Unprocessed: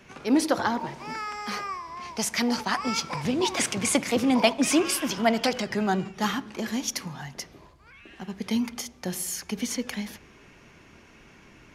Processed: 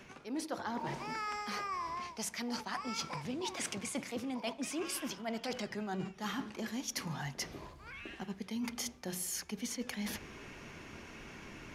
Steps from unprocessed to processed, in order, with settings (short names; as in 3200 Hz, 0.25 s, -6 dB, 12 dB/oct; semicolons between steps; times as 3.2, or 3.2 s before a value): notches 60/120/180 Hz; reverse; compressor 10:1, threshold -39 dBFS, peak gain reduction 24.5 dB; reverse; gain +3 dB